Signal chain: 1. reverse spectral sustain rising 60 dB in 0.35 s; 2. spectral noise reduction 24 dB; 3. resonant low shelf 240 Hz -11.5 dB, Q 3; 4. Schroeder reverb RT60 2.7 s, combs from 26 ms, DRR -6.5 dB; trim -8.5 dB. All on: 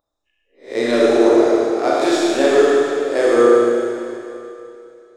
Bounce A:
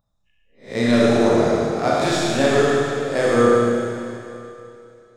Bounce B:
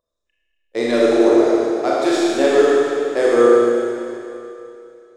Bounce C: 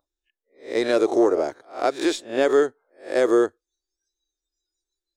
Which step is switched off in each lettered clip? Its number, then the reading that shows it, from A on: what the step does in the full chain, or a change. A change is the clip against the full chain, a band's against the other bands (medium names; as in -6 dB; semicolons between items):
3, 500 Hz band -4.0 dB; 1, momentary loudness spread change +2 LU; 4, momentary loudness spread change -8 LU